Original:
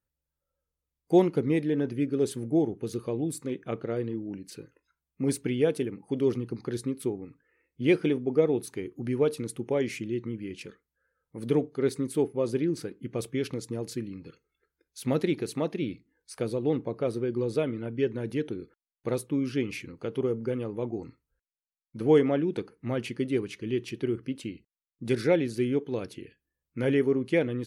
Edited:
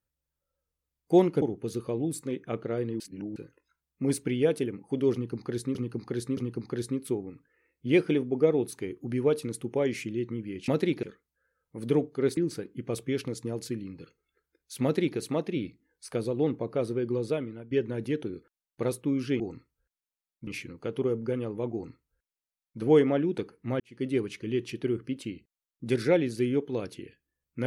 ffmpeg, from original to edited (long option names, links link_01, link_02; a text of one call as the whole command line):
ffmpeg -i in.wav -filter_complex "[0:a]asplit=13[link_01][link_02][link_03][link_04][link_05][link_06][link_07][link_08][link_09][link_10][link_11][link_12][link_13];[link_01]atrim=end=1.422[link_14];[link_02]atrim=start=2.608:end=4.192[link_15];[link_03]atrim=start=4.188:end=4.552,asetpts=PTS-STARTPTS,areverse[link_16];[link_04]atrim=start=4.548:end=6.942[link_17];[link_05]atrim=start=6.318:end=6.942[link_18];[link_06]atrim=start=6.318:end=10.632[link_19];[link_07]atrim=start=15.088:end=15.442[link_20];[link_08]atrim=start=10.628:end=11.972[link_21];[link_09]atrim=start=12.628:end=17.97,asetpts=PTS-STARTPTS,afade=type=out:start_time=4.622:duration=0.72:curve=qsin:silence=0.199526[link_22];[link_10]atrim=start=17.97:end=19.662,asetpts=PTS-STARTPTS,afade=type=in:duration=0.004:curve=hsin:silence=0.199526[link_23];[link_11]atrim=start=20.918:end=21.992[link_24];[link_12]atrim=start=19.658:end=22.99,asetpts=PTS-STARTPTS,afade=type=out:start_time=3.328:duration=0.004:curve=hsin[link_25];[link_13]atrim=start=22.99,asetpts=PTS-STARTPTS,afade=type=in:duration=0.26:curve=qua[link_26];[link_14][link_15]acrossfade=duration=0.004:curve1=hsin:curve2=hsin[link_27];[link_27][link_16]acrossfade=duration=0.004:curve1=hsin:curve2=hsin[link_28];[link_28][link_17]acrossfade=duration=0.004:curve1=hsin:curve2=hsin[link_29];[link_29][link_18]acrossfade=duration=0.004:curve1=hsin:curve2=hsin[link_30];[link_30][link_19]acrossfade=duration=0.004:curve1=hsin:curve2=hsin[link_31];[link_31][link_20]acrossfade=duration=0.004:curve1=hsin:curve2=hsin[link_32];[link_32][link_21]acrossfade=duration=0.004:curve1=hsin:curve2=hsin[link_33];[link_22][link_23]concat=n=2:v=0:a=1[link_34];[link_33][link_34]acrossfade=duration=0.004:curve1=hsin:curve2=hsin[link_35];[link_35][link_24]acrossfade=duration=0.004:curve1=hsin:curve2=hsin[link_36];[link_25][link_26]concat=n=2:v=0:a=1[link_37];[link_36][link_37]acrossfade=duration=0.004:curve1=hsin:curve2=hsin" out.wav